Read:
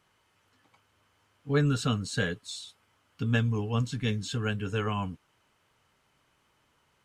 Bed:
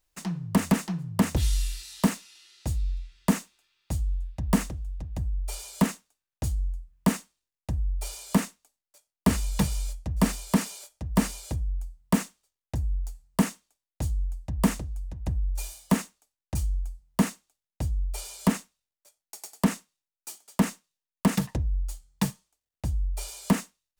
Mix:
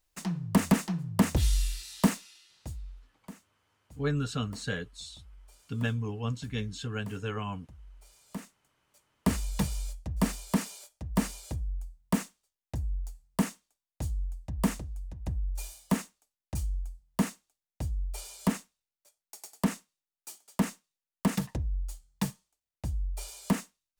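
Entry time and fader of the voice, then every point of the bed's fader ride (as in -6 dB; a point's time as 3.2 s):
2.50 s, -4.5 dB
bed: 2.28 s -1 dB
3.22 s -23 dB
8.02 s -23 dB
9.05 s -4.5 dB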